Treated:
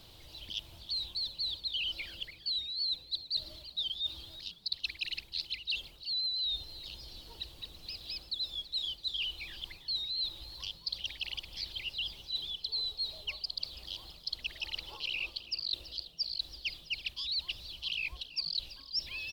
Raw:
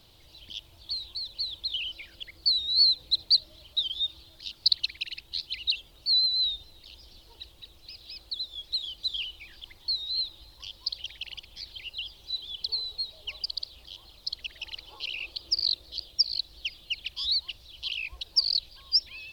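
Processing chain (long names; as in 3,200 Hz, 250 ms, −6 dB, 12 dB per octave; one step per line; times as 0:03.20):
reversed playback
downward compressor 10 to 1, threshold −35 dBFS, peak gain reduction 18.5 dB
reversed playback
echo with shifted repeats 330 ms, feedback 47%, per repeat +110 Hz, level −16 dB
level +2.5 dB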